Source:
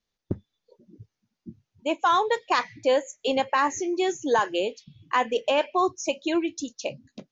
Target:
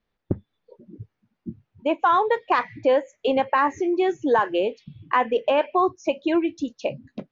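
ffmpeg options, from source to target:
ffmpeg -i in.wav -filter_complex "[0:a]lowpass=2200,asplit=2[link_01][link_02];[link_02]acompressor=threshold=-31dB:ratio=6,volume=3dB[link_03];[link_01][link_03]amix=inputs=2:normalize=0" out.wav

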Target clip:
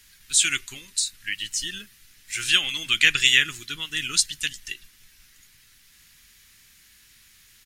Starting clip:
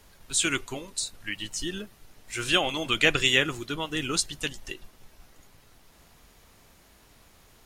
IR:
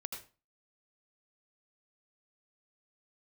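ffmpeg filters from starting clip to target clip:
-af "firequalizer=gain_entry='entry(150,0);entry(620,-15);entry(1700,11);entry(5300,13)':delay=0.05:min_phase=1,volume=-6.5dB"

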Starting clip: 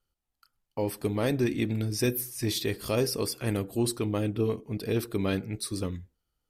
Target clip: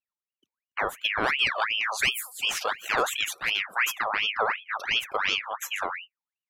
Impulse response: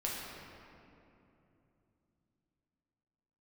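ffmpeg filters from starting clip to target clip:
-af "afftdn=noise_reduction=20:noise_floor=-44,highshelf=frequency=11000:gain=-4.5,aeval=exprs='val(0)*sin(2*PI*1900*n/s+1900*0.55/2.8*sin(2*PI*2.8*n/s))':channel_layout=same,volume=4dB"

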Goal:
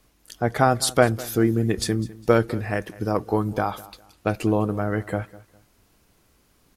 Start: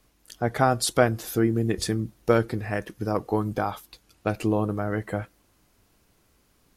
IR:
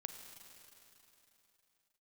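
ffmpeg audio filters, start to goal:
-af "aecho=1:1:203|406:0.1|0.029,volume=2.5dB"

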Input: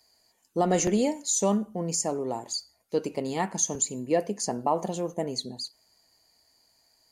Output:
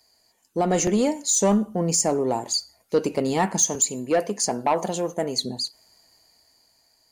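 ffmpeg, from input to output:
ffmpeg -i in.wav -filter_complex "[0:a]dynaudnorm=framelen=280:gausssize=9:maxgain=5.5dB,asoftclip=type=tanh:threshold=-13.5dB,asettb=1/sr,asplit=3[link_01][link_02][link_03];[link_01]atrim=end=3.684[link_04];[link_02]atrim=start=3.68:end=5.42,asetpts=PTS-STARTPTS,afade=type=in:duration=0.004:curve=qsin,afade=type=out:start_time=1.736:duration=0.004:curve=qsin,lowshelf=frequency=340:gain=-7[link_05];[link_03]atrim=start=5.416[link_06];[link_04][link_05]acrossfade=duration=0.004:curve1=hsin:curve2=qsin[link_07];[link_07][link_06]acrossfade=duration=0.004:curve1=qsin:curve2=hsin,volume=2.5dB" out.wav

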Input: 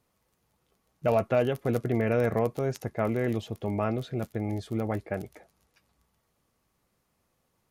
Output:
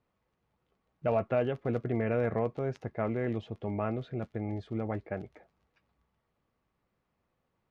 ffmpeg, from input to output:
ffmpeg -i in.wav -af "lowpass=2900,volume=-4dB" out.wav

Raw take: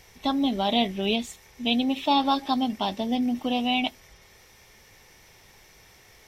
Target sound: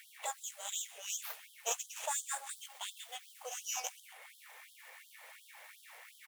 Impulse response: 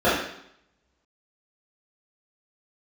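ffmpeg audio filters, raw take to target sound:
-filter_complex "[0:a]asettb=1/sr,asplit=3[link_01][link_02][link_03];[link_01]atrim=end=2.504[link_04];[link_02]atrim=start=2.5:end=3.32,asetpts=PTS-STARTPTS,afade=type=in:duration=0.004:curve=qsin,afade=type=out:start_time=0.816:duration=0.004:curve=qsin,aderivative[link_05];[link_03]atrim=start=3.316[link_06];[link_04][link_05]acrossfade=duration=0.004:curve1=hsin:curve2=qsin[link_07];[link_07][link_06]acrossfade=duration=0.004:curve1=qsin:curve2=hsin,asplit=2[link_08][link_09];[link_09]aecho=0:1:128|256|384:0.0794|0.0326|0.0134[link_10];[link_08][link_10]amix=inputs=2:normalize=0,asettb=1/sr,asplit=3[link_11][link_12][link_13];[link_11]atrim=end=0.534[link_14];[link_12]atrim=start=0.53:end=1.1,asetpts=PTS-STARTPTS,afade=type=in:duration=0.004:curve=qsin,afade=type=out:start_time=0.566:duration=0.004:curve=qsin,acrossover=split=210|3000[link_15][link_16][link_17];[link_16]acompressor=threshold=-41dB:ratio=3[link_18];[link_15][link_18][link_17]amix=inputs=3:normalize=0[link_19];[link_13]atrim=start=1.096[link_20];[link_14][link_19]acrossfade=duration=0.004:curve1=hsin:curve2=qsin[link_21];[link_21][link_20]acrossfade=duration=0.004:curve1=qsin:curve2=hsin,asplit=2[link_22][link_23];[link_23]adelay=16,volume=-11.5dB[link_24];[link_22][link_24]amix=inputs=2:normalize=0,acrossover=split=3200[link_25][link_26];[link_25]acompressor=threshold=-39dB:ratio=6[link_27];[link_26]aeval=exprs='abs(val(0))':channel_layout=same[link_28];[link_27][link_28]amix=inputs=2:normalize=0,lowshelf=frequency=320:gain=-8,afftfilt=real='re*gte(b*sr/1024,420*pow(3100/420,0.5+0.5*sin(2*PI*2.8*pts/sr)))':imag='im*gte(b*sr/1024,420*pow(3100/420,0.5+0.5*sin(2*PI*2.8*pts/sr)))':win_size=1024:overlap=0.75,volume=3.5dB"

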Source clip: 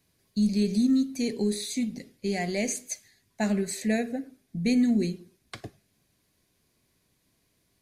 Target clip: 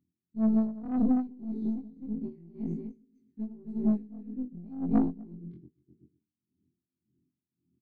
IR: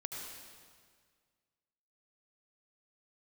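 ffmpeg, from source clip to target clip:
-filter_complex "[0:a]afftfilt=real='re':imag='-im':win_size=2048:overlap=0.75,highpass=frequency=75:width=0.5412,highpass=frequency=75:width=1.3066,aresample=22050,aresample=44100,firequalizer=gain_entry='entry(100,0);entry(230,5);entry(360,1);entry(530,-29);entry(2700,-13);entry(5200,-12)':delay=0.05:min_phase=1,asplit=2[link_01][link_02];[link_02]adelay=128,lowpass=frequency=2000:poles=1,volume=-11dB,asplit=2[link_03][link_04];[link_04]adelay=128,lowpass=frequency=2000:poles=1,volume=0.25,asplit=2[link_05][link_06];[link_06]adelay=128,lowpass=frequency=2000:poles=1,volume=0.25[link_07];[link_03][link_05][link_07]amix=inputs=3:normalize=0[link_08];[link_01][link_08]amix=inputs=2:normalize=0,aeval=exprs='0.224*(cos(1*acos(clip(val(0)/0.224,-1,1)))-cos(1*PI/2))+0.0282*(cos(3*acos(clip(val(0)/0.224,-1,1)))-cos(3*PI/2))+0.0141*(cos(4*acos(clip(val(0)/0.224,-1,1)))-cos(4*PI/2))+0.00631*(cos(8*acos(clip(val(0)/0.224,-1,1)))-cos(8*PI/2))':channel_layout=same,lowshelf=frequency=470:width_type=q:width=1.5:gain=8.5,asplit=2[link_09][link_10];[link_10]aecho=0:1:251:0.668[link_11];[link_09][link_11]amix=inputs=2:normalize=0,adynamicsmooth=sensitivity=1.5:basefreq=1600,bandreject=frequency=438.5:width_type=h:width=4,bandreject=frequency=877:width_type=h:width=4,bandreject=frequency=1315.5:width_type=h:width=4,bandreject=frequency=1754:width_type=h:width=4,bandreject=frequency=2192.5:width_type=h:width=4,bandreject=frequency=2631:width_type=h:width=4,bandreject=frequency=3069.5:width_type=h:width=4,bandreject=frequency=3508:width_type=h:width=4,bandreject=frequency=3946.5:width_type=h:width=4,bandreject=frequency=4385:width_type=h:width=4,bandreject=frequency=4823.5:width_type=h:width=4,bandreject=frequency=5262:width_type=h:width=4,bandreject=frequency=5700.5:width_type=h:width=4,bandreject=frequency=6139:width_type=h:width=4,bandreject=frequency=6577.5:width_type=h:width=4,bandreject=frequency=7016:width_type=h:width=4,bandreject=frequency=7454.5:width_type=h:width=4,bandreject=frequency=7893:width_type=h:width=4,bandreject=frequency=8331.5:width_type=h:width=4,bandreject=frequency=8770:width_type=h:width=4,bandreject=frequency=9208.5:width_type=h:width=4,bandreject=frequency=9647:width_type=h:width=4,bandreject=frequency=10085.5:width_type=h:width=4,bandreject=frequency=10524:width_type=h:width=4,bandreject=frequency=10962.5:width_type=h:width=4,bandreject=frequency=11401:width_type=h:width=4,bandreject=frequency=11839.5:width_type=h:width=4,bandreject=frequency=12278:width_type=h:width=4,bandreject=frequency=12716.5:width_type=h:width=4,bandreject=frequency=13155:width_type=h:width=4,bandreject=frequency=13593.5:width_type=h:width=4,asoftclip=type=tanh:threshold=-13dB,aeval=exprs='val(0)*pow(10,-20*(0.5-0.5*cos(2*PI*1.8*n/s))/20)':channel_layout=same,volume=-4.5dB"

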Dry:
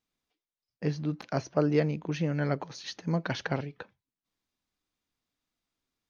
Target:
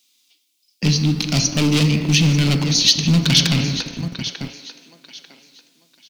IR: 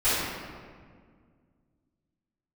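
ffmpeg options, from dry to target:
-filter_complex "[0:a]aecho=1:1:893|1786|2679:0.211|0.055|0.0143,asplit=2[link_01][link_02];[1:a]atrim=start_sample=2205,adelay=12[link_03];[link_02][link_03]afir=irnorm=-1:irlink=0,volume=-24.5dB[link_04];[link_01][link_04]amix=inputs=2:normalize=0,asoftclip=type=hard:threshold=-27.5dB,equalizer=frequency=1800:width=0.34:gain=7,aexciter=amount=6.3:drive=8.7:freq=2500,acrossover=split=280[link_05][link_06];[link_05]acrusher=bits=6:mix=0:aa=0.000001[link_07];[link_07][link_06]amix=inputs=2:normalize=0,lowshelf=frequency=350:width_type=q:width=1.5:gain=12.5,bandreject=frequency=60:width_type=h:width=6,bandreject=frequency=120:width_type=h:width=6,bandreject=frequency=180:width_type=h:width=6,volume=2dB"

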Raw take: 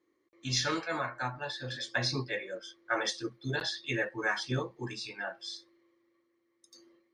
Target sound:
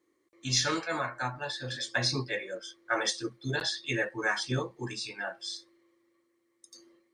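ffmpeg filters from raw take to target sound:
ffmpeg -i in.wav -af "equalizer=frequency=8500:width=1.4:gain=8.5,volume=1.5dB" out.wav

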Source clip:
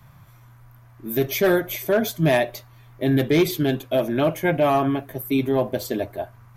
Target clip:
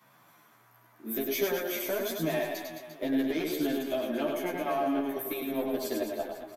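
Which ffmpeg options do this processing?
ffmpeg -i in.wav -filter_complex "[0:a]highpass=frequency=230:width=0.5412,highpass=frequency=230:width=1.3066,acompressor=threshold=-25dB:ratio=6,aeval=exprs='0.178*(cos(1*acos(clip(val(0)/0.178,-1,1)))-cos(1*PI/2))+0.00398*(cos(4*acos(clip(val(0)/0.178,-1,1)))-cos(4*PI/2))+0.0158*(cos(6*acos(clip(val(0)/0.178,-1,1)))-cos(6*PI/2))+0.00891*(cos(8*acos(clip(val(0)/0.178,-1,1)))-cos(8*PI/2))':channel_layout=same,asplit=2[link_01][link_02];[link_02]aecho=0:1:100|215|347.2|499.3|674.2:0.631|0.398|0.251|0.158|0.1[link_03];[link_01][link_03]amix=inputs=2:normalize=0,asplit=2[link_04][link_05];[link_05]adelay=11.6,afreqshift=-1.6[link_06];[link_04][link_06]amix=inputs=2:normalize=1,volume=-1dB" out.wav

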